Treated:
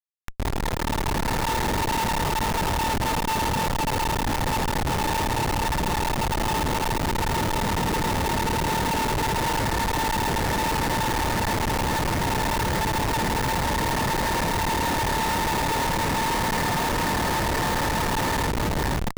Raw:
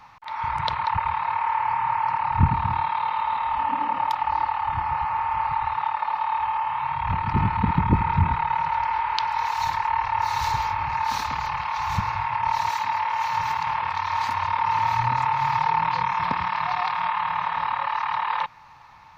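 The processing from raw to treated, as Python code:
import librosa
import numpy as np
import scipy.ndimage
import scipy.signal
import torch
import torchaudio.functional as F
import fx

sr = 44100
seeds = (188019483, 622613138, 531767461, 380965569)

y = fx.cabinet(x, sr, low_hz=380.0, low_slope=12, high_hz=3500.0, hz=(460.0, 660.0, 1100.0, 1800.0), db=(9, -4, -8, 10))
y = fx.echo_diffused(y, sr, ms=518, feedback_pct=71, wet_db=-3.5)
y = fx.schmitt(y, sr, flips_db=-22.5)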